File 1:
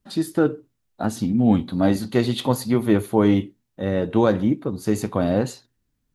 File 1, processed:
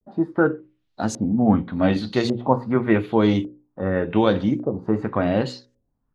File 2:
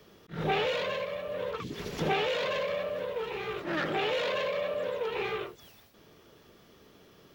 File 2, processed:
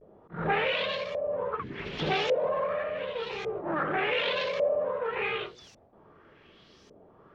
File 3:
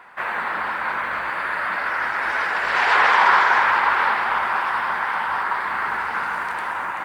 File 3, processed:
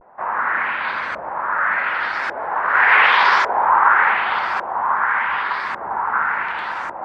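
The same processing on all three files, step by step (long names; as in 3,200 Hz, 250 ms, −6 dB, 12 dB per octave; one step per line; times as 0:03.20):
mains-hum notches 60/120/180/240/300/360/420/480/540 Hz
pitch vibrato 0.42 Hz 49 cents
auto-filter low-pass saw up 0.87 Hz 540–6,800 Hz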